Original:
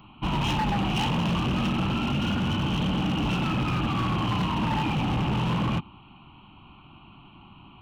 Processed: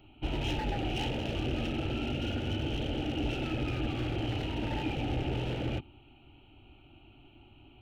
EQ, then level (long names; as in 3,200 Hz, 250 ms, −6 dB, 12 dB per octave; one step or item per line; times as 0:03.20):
high-shelf EQ 2,800 Hz −10 dB
phaser with its sweep stopped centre 440 Hz, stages 4
notch filter 1,100 Hz, Q 21
0.0 dB